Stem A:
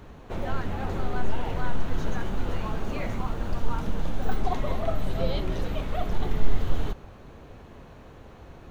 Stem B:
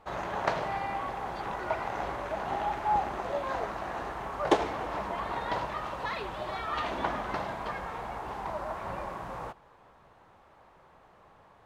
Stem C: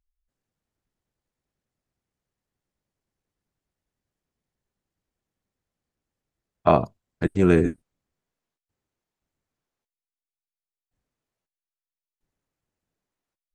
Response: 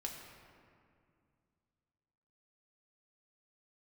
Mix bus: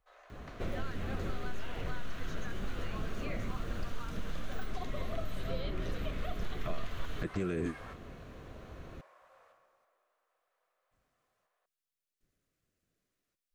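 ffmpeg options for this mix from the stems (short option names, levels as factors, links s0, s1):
-filter_complex "[0:a]adelay=300,volume=0.841[s0];[1:a]highpass=f=530:w=0.5412,highpass=f=530:w=1.3066,volume=0.398,asplit=2[s1][s2];[s2]volume=0.316[s3];[2:a]alimiter=limit=0.251:level=0:latency=1:release=198,volume=1.33,asplit=2[s4][s5];[s5]apad=whole_len=514040[s6];[s1][s6]sidechaingate=range=0.0224:threshold=0.00224:ratio=16:detection=peak[s7];[s7][s4]amix=inputs=2:normalize=0,alimiter=limit=0.141:level=0:latency=1:release=15,volume=1[s8];[3:a]atrim=start_sample=2205[s9];[s3][s9]afir=irnorm=-1:irlink=0[s10];[s0][s8][s10]amix=inputs=3:normalize=0,equalizer=f=870:w=4.3:g=-14.5,acrossover=split=790|2600[s11][s12][s13];[s11]acompressor=threshold=0.0251:ratio=4[s14];[s12]acompressor=threshold=0.00501:ratio=4[s15];[s13]acompressor=threshold=0.002:ratio=4[s16];[s14][s15][s16]amix=inputs=3:normalize=0"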